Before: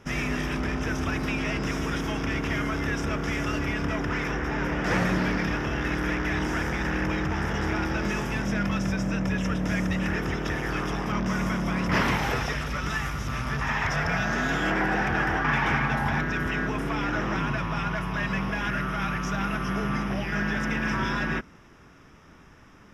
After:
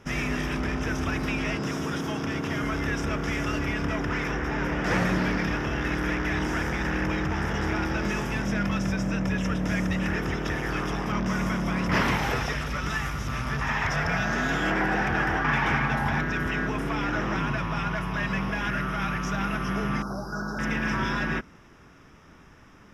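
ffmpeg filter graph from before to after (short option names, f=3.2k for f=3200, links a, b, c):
-filter_complex "[0:a]asettb=1/sr,asplit=3[a][b][c];[a]atrim=end=1.554[d];[b]atrim=start=1.55:end=2.63,asetpts=PTS-STARTPTS,afade=t=in:d=0.004:c=qsin,afade=t=out:st=1.076:d=0.004:c=qsin,highpass=f=87:w=0.5412,highpass=f=87:w=1.3066,equalizer=f=2.2k:w=2:g=-5[e];[c]atrim=start=2.626[f];[d][e]acrossfade=d=0.004:c1=hsin:c2=qsin[g];[g][f]acrossfade=d=0.004:c1=qsin:c2=hsin,asettb=1/sr,asplit=3[h][i][j];[h]atrim=end=20.024[k];[i]atrim=start=20.02:end=20.59,asetpts=PTS-STARTPTS,afade=t=in:d=0.004:c=qsin,afade=t=out:st=0.566:d=0.004:c=qsin,asuperstop=centerf=2500:order=20:qfactor=1,lowshelf=f=420:g=-6[l];[j]atrim=start=20.586[m];[k][l]acrossfade=d=0.004:c1=hsin:c2=qsin[n];[n][m]acrossfade=d=0.004:c1=qsin:c2=hsin"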